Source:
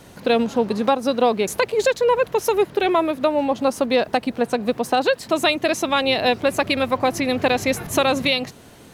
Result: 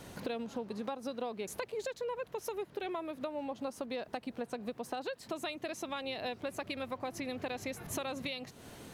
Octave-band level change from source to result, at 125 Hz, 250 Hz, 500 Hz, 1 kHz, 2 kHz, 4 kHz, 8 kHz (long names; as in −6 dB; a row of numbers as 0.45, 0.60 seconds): −16.5, −18.0, −19.5, −20.0, −20.0, −20.0, −15.5 decibels